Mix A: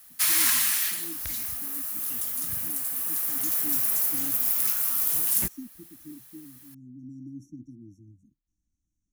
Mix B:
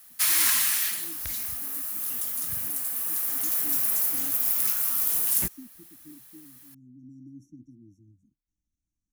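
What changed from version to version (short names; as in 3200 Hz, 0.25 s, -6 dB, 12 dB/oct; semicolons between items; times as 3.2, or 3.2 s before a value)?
speech -5.0 dB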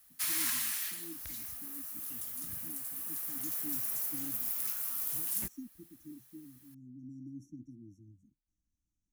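background -10.5 dB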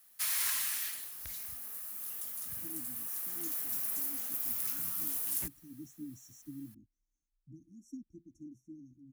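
speech: entry +2.35 s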